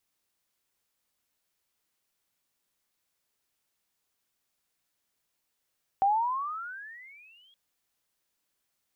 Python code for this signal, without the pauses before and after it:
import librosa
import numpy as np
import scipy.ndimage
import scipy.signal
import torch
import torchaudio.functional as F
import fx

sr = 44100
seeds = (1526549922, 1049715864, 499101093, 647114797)

y = fx.riser_tone(sr, length_s=1.52, level_db=-19.5, wave='sine', hz=766.0, rise_st=25.5, swell_db=-39)